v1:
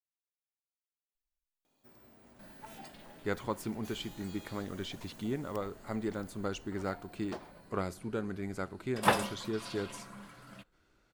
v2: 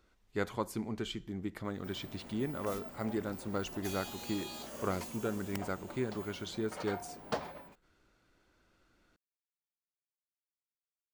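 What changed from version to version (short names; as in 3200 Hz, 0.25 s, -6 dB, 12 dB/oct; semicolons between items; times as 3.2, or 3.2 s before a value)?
speech: entry -2.90 s; first sound +9.0 dB; second sound: muted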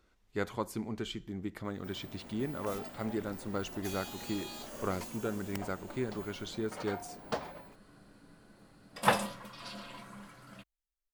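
second sound: unmuted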